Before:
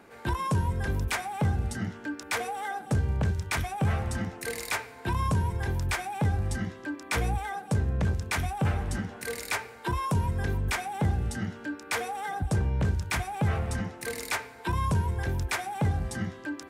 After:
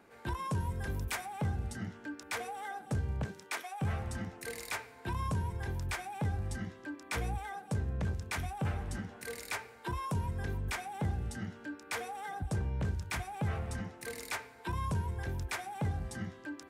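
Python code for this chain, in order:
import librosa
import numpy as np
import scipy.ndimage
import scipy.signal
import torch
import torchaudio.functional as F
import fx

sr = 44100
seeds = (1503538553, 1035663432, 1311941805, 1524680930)

y = fx.high_shelf(x, sr, hz=9900.0, db=8.0, at=(0.6, 1.26))
y = fx.highpass(y, sr, hz=fx.line((3.24, 150.0), (3.8, 540.0)), slope=24, at=(3.24, 3.8), fade=0.02)
y = y * 10.0 ** (-7.5 / 20.0)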